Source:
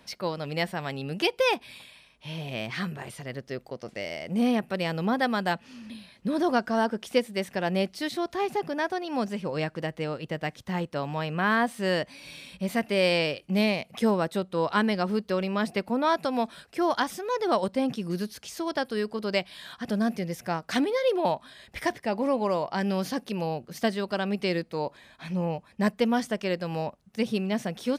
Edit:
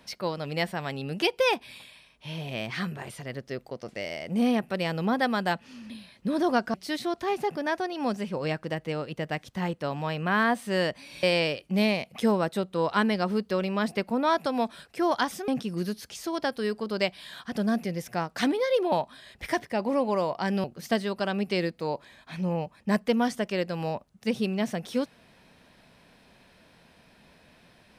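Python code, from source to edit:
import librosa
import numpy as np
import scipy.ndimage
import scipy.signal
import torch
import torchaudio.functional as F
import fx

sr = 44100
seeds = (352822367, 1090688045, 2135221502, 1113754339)

y = fx.edit(x, sr, fx.cut(start_s=6.74, length_s=1.12),
    fx.cut(start_s=12.35, length_s=0.67),
    fx.cut(start_s=17.27, length_s=0.54),
    fx.cut(start_s=22.97, length_s=0.59), tone=tone)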